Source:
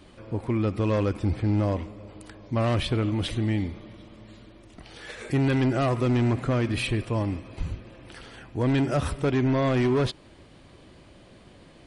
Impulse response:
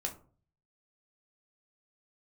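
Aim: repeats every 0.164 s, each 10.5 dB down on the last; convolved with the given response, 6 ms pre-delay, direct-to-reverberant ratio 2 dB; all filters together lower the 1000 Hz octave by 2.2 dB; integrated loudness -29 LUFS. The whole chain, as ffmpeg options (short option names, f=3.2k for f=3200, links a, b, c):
-filter_complex "[0:a]equalizer=f=1k:t=o:g=-3,aecho=1:1:164|328|492:0.299|0.0896|0.0269,asplit=2[a][b];[1:a]atrim=start_sample=2205,adelay=6[c];[b][c]afir=irnorm=-1:irlink=0,volume=-3dB[d];[a][d]amix=inputs=2:normalize=0,volume=-5.5dB"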